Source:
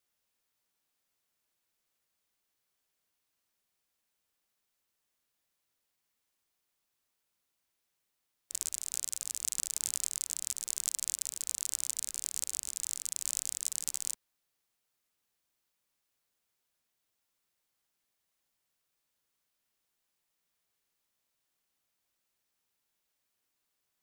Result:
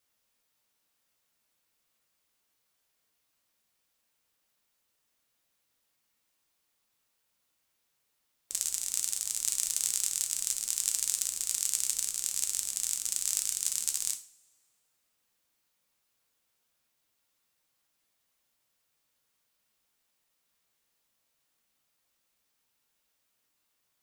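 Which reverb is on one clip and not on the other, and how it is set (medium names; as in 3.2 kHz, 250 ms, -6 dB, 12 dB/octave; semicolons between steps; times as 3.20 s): two-slope reverb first 0.37 s, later 1.8 s, from -25 dB, DRR 4.5 dB; trim +3.5 dB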